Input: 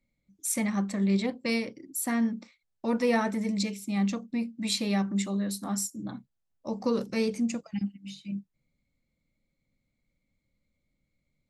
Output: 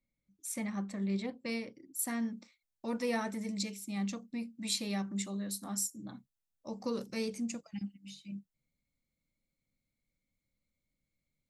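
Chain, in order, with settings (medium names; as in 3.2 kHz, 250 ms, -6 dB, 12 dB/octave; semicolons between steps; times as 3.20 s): treble shelf 4.6 kHz -2 dB, from 1.99 s +8.5 dB; trim -8.5 dB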